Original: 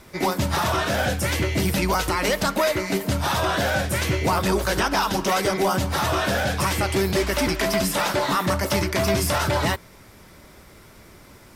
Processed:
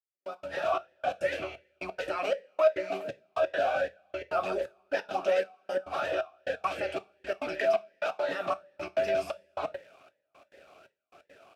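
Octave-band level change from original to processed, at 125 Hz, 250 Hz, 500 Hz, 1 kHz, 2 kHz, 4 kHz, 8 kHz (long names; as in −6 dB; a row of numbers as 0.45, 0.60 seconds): below −25 dB, −19.5 dB, −4.5 dB, −10.0 dB, −11.5 dB, −17.5 dB, below −25 dB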